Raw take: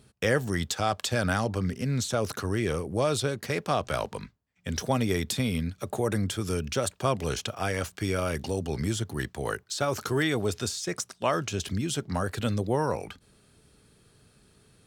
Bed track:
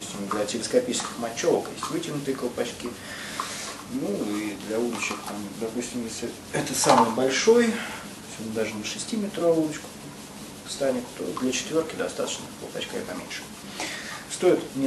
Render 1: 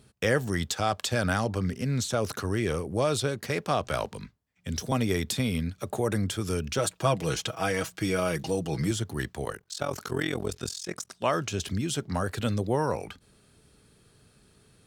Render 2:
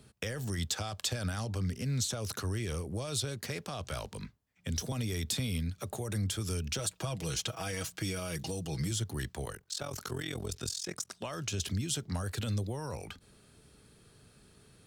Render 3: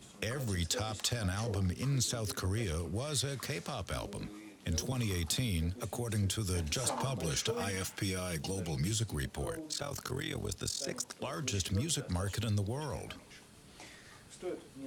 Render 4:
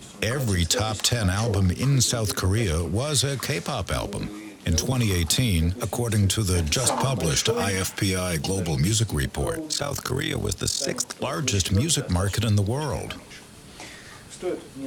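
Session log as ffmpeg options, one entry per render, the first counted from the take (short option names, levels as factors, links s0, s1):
-filter_complex "[0:a]asettb=1/sr,asplit=3[s0][s1][s2];[s0]atrim=end=4.104[s3];[s1]atrim=start=4.1:end=4.92,asetpts=PTS-STARTPTS,afade=t=in:d=0.004:c=qsin,afade=t=out:st=0.816:d=0.004:c=qsin,acrossover=split=380|3000[s4][s5][s6];[s5]acompressor=threshold=0.00447:ratio=2.5:attack=3.2:release=140:knee=2.83:detection=peak[s7];[s4][s7][s6]amix=inputs=3:normalize=0[s8];[s2]atrim=start=4.916[s9];[s3][s8]acrossfade=d=0.004:c1=hsin:c2=qsin[s10];[s10][s9]acrossfade=d=0.004:c1=qsin:c2=hsin,asettb=1/sr,asplit=3[s11][s12][s13];[s11]atrim=end=6.784[s14];[s12]atrim=start=6.78:end=8.91,asetpts=PTS-STARTPTS,afade=t=in:d=0.004:c=qsin,afade=t=out:st=2.126:d=0.004:c=qsin,aecho=1:1:6.2:0.65,atrim=end_sample=93933[s15];[s13]atrim=start=8.906[s16];[s14][s15]acrossfade=d=0.004:c1=hsin:c2=qsin[s17];[s17][s16]acrossfade=d=0.004:c1=qsin:c2=hsin,asettb=1/sr,asplit=3[s18][s19][s20];[s18]atrim=end=9.454[s21];[s19]atrim=start=9.45:end=11.11,asetpts=PTS-STARTPTS,afade=t=in:d=0.004:c=qsin,afade=t=out:st=1.656:d=0.004:c=qsin,tremolo=f=43:d=0.919[s22];[s20]atrim=start=11.106[s23];[s21][s22]acrossfade=d=0.004:c1=hsin:c2=qsin[s24];[s24][s23]acrossfade=d=0.004:c1=qsin:c2=hsin"
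-filter_complex "[0:a]alimiter=limit=0.106:level=0:latency=1:release=19,acrossover=split=130|3000[s0][s1][s2];[s1]acompressor=threshold=0.0126:ratio=6[s3];[s0][s3][s2]amix=inputs=3:normalize=0"
-filter_complex "[1:a]volume=0.0944[s0];[0:a][s0]amix=inputs=2:normalize=0"
-af "volume=3.76"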